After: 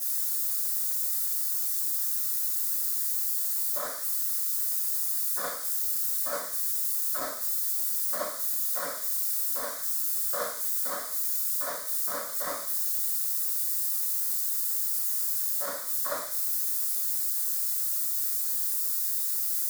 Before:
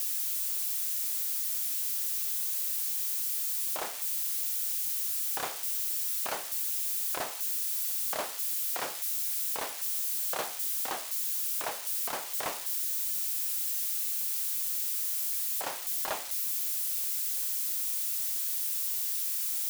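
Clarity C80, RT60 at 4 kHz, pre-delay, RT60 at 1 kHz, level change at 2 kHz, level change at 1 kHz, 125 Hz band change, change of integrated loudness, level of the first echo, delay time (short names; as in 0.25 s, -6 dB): 10.5 dB, 0.40 s, 4 ms, 0.40 s, 0.0 dB, +0.5 dB, n/a, +3.0 dB, none, none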